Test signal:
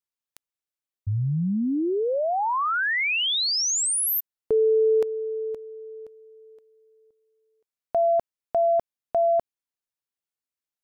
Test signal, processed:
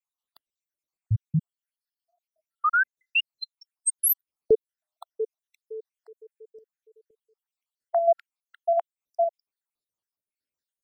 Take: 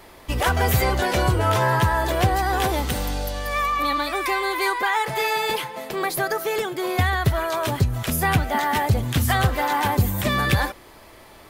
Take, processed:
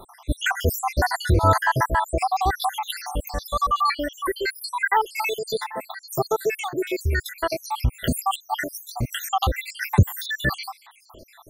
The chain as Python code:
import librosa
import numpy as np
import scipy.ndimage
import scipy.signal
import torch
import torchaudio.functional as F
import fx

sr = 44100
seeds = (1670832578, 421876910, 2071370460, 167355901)

y = fx.spec_dropout(x, sr, seeds[0], share_pct=78)
y = y * librosa.db_to_amplitude(4.5)